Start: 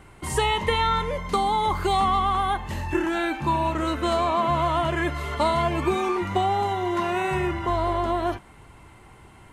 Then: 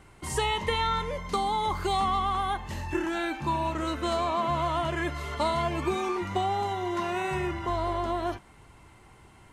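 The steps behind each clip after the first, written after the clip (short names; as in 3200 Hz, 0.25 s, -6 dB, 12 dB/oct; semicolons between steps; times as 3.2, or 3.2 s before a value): bell 5600 Hz +4.5 dB 1 oct; gain -5 dB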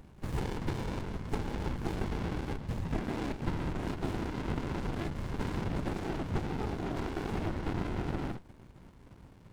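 compressor 2:1, threshold -33 dBFS, peak gain reduction 6 dB; whisperiser; running maximum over 65 samples; gain +2.5 dB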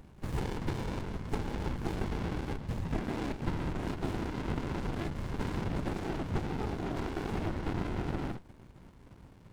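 nothing audible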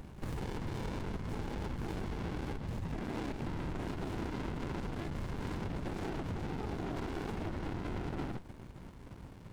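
in parallel at +1 dB: vocal rider; on the sum: limiter -24.5 dBFS, peak gain reduction 11 dB; compressor, threshold -32 dBFS, peak gain reduction 5 dB; gain -2.5 dB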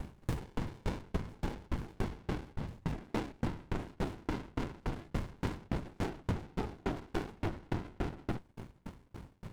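dB-ramp tremolo decaying 3.5 Hz, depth 35 dB; gain +9 dB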